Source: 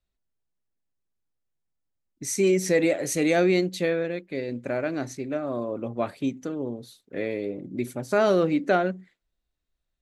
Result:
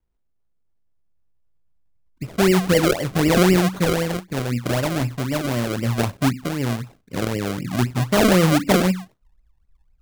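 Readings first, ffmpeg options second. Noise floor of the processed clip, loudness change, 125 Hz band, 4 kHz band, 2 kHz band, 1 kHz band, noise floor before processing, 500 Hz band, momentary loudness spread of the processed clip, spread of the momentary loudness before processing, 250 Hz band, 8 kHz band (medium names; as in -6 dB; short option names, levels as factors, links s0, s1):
-66 dBFS, +5.5 dB, +13.5 dB, +11.5 dB, +5.5 dB, +6.5 dB, -81 dBFS, +2.5 dB, 10 LU, 12 LU, +7.0 dB, +4.5 dB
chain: -af "lowpass=f=3400:w=0.5412,lowpass=f=3400:w=1.3066,asubboost=boost=7:cutoff=140,acrusher=samples=34:mix=1:aa=0.000001:lfo=1:lforange=34:lforate=3.9,volume=2"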